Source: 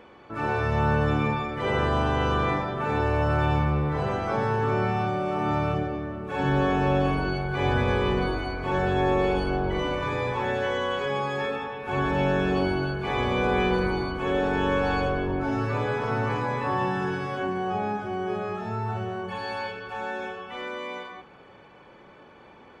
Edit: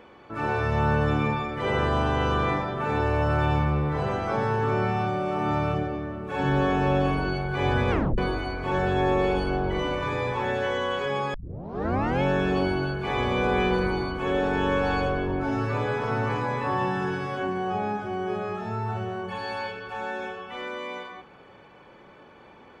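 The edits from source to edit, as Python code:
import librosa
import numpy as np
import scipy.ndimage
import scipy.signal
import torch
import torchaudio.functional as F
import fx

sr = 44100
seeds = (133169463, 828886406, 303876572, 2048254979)

y = fx.edit(x, sr, fx.tape_stop(start_s=7.91, length_s=0.27),
    fx.tape_start(start_s=11.34, length_s=0.89), tone=tone)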